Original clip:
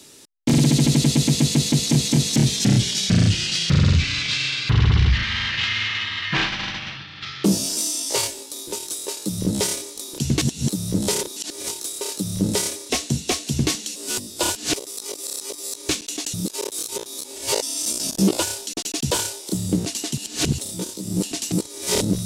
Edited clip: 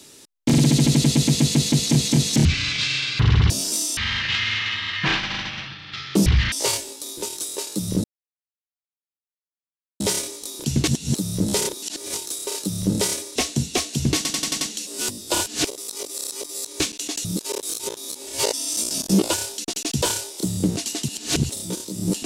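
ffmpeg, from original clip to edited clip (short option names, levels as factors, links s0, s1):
-filter_complex "[0:a]asplit=12[s0][s1][s2][s3][s4][s5][s6][s7][s8][s9][s10][s11];[s0]atrim=end=2.452[s12];[s1]atrim=start=3.948:end=5.002[s13];[s2]atrim=start=7.548:end=8.022[s14];[s3]atrim=start=5.258:end=7.552[s15];[s4]atrim=start=4.998:end=5.262[s16];[s5]atrim=start=8.018:end=9.54,asetpts=PTS-STARTPTS,afade=t=out:st=1.518:d=0.004:c=hsin,apad=pad_dur=1.96[s17];[s6]atrim=start=9.54:end=13.792,asetpts=PTS-STARTPTS,afade=t=in:d=0.004:c=hsin[s18];[s7]atrim=start=13.698:end=13.792[s19];[s8]atrim=start=13.698:end=13.792[s20];[s9]atrim=start=13.698:end=13.792[s21];[s10]atrim=start=13.698:end=13.792[s22];[s11]atrim=start=13.698[s23];[s12][s13]acrossfade=d=0.004:c1=hsin:c2=hsin[s24];[s24][s14]acrossfade=d=0.004:c1=hsin:c2=hsin[s25];[s25][s15]acrossfade=d=0.004:c1=hsin:c2=hsin[s26];[s26][s16]acrossfade=d=0.004:c1=hsin:c2=hsin[s27];[s17][s18]concat=n=2:v=0:a=1[s28];[s27][s28]acrossfade=d=0.004:c1=hsin:c2=hsin[s29];[s29][s19]acrossfade=d=0.004:c1=hsin:c2=hsin[s30];[s30][s20]acrossfade=d=0.004:c1=hsin:c2=hsin[s31];[s31][s21]acrossfade=d=0.004:c1=hsin:c2=hsin[s32];[s32][s22]acrossfade=d=0.004:c1=hsin:c2=hsin[s33];[s33][s23]acrossfade=d=0.004:c1=hsin:c2=hsin"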